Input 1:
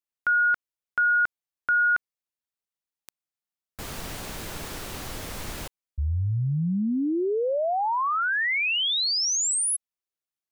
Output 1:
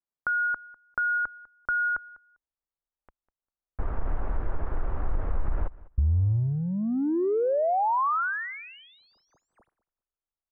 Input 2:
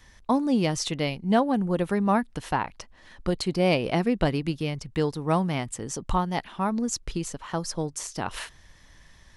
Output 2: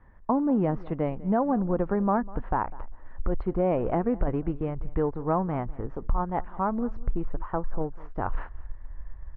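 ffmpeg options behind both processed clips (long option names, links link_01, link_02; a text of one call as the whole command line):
ffmpeg -i in.wav -filter_complex "[0:a]asubboost=boost=10.5:cutoff=50,asplit=2[link_01][link_02];[link_02]aeval=exprs='sgn(val(0))*max(abs(val(0))-0.02,0)':channel_layout=same,volume=-8dB[link_03];[link_01][link_03]amix=inputs=2:normalize=0,acompressor=threshold=-22dB:ratio=6:attack=16:release=29:detection=rms,lowpass=frequency=1400:width=0.5412,lowpass=frequency=1400:width=1.3066,aecho=1:1:199|398:0.0944|0.0142" out.wav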